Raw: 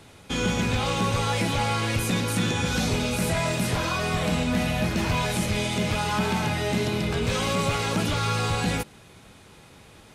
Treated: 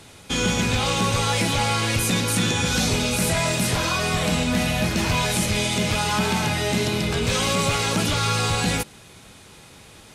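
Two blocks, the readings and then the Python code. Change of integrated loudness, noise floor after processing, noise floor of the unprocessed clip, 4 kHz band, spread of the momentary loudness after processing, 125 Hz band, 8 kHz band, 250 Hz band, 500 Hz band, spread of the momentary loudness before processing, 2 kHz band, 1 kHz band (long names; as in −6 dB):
+3.5 dB, −47 dBFS, −50 dBFS, +6.0 dB, 2 LU, +2.0 dB, +8.0 dB, +2.0 dB, +2.0 dB, 1 LU, +4.0 dB, +2.5 dB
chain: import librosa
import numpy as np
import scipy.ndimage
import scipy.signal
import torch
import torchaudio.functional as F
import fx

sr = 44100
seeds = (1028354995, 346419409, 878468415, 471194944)

y = fx.peak_eq(x, sr, hz=8000.0, db=6.0, octaves=2.6)
y = F.gain(torch.from_numpy(y), 2.0).numpy()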